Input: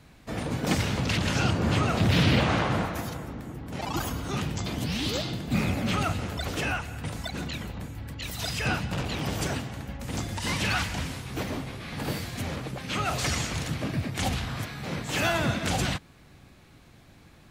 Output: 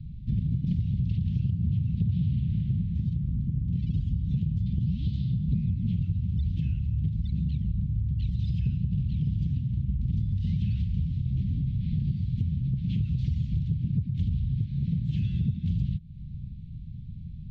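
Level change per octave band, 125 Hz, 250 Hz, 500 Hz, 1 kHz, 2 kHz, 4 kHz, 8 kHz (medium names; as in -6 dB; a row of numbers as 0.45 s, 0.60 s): +5.0 dB, -1.0 dB, under -25 dB, under -40 dB, under -25 dB, under -20 dB, under -35 dB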